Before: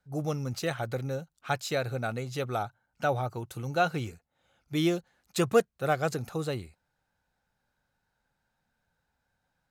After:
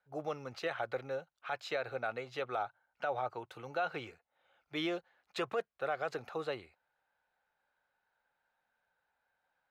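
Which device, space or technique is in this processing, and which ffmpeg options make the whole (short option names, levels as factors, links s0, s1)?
DJ mixer with the lows and highs turned down: -filter_complex "[0:a]acrossover=split=420 3700:gain=0.112 1 0.0794[s0][s1][s2];[s0][s1][s2]amix=inputs=3:normalize=0,alimiter=level_in=1.12:limit=0.0631:level=0:latency=1:release=78,volume=0.891"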